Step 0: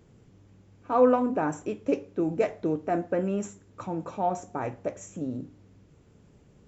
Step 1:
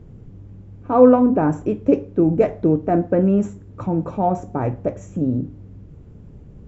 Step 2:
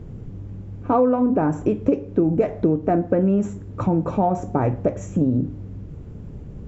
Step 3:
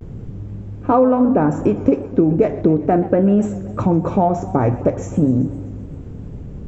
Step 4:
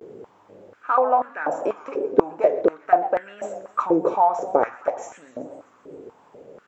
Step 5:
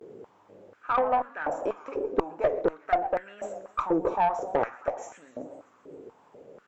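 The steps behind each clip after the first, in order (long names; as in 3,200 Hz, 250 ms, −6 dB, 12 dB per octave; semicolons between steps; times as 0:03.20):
spectral tilt −3.5 dB per octave; level +5 dB
downward compressor 6 to 1, threshold −21 dBFS, peak gain reduction 14.5 dB; level +5.5 dB
pitch vibrato 0.38 Hz 45 cents; feedback echo with a swinging delay time 128 ms, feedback 71%, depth 165 cents, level −17 dB; level +4 dB
high-pass on a step sequencer 4.1 Hz 420–1,700 Hz; level −4.5 dB
tube saturation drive 11 dB, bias 0.3; level −4 dB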